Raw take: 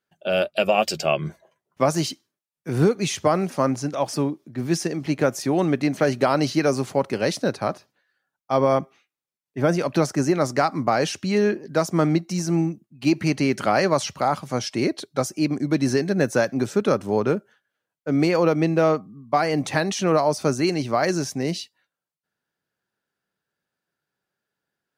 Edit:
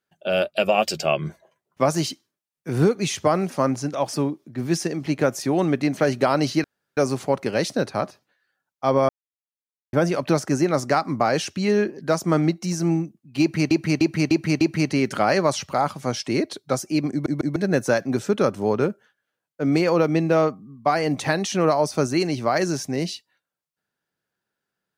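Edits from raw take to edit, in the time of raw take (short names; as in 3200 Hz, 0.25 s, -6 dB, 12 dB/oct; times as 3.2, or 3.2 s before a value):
6.64 insert room tone 0.33 s
8.76–9.6 mute
13.08–13.38 loop, 5 plays
15.58 stutter in place 0.15 s, 3 plays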